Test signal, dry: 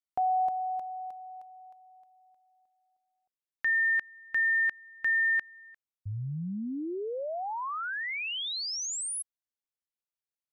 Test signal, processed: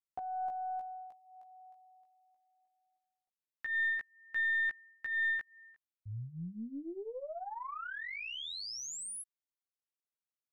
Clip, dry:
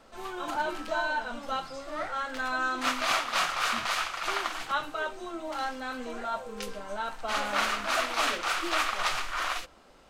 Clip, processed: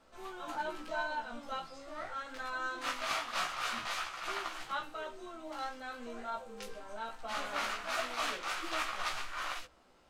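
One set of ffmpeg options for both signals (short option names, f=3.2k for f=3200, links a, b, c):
-af "flanger=delay=15.5:depth=2.3:speed=0.22,aeval=exprs='0.15*(cos(1*acos(clip(val(0)/0.15,-1,1)))-cos(1*PI/2))+0.00596*(cos(4*acos(clip(val(0)/0.15,-1,1)))-cos(4*PI/2))':c=same,volume=-5dB"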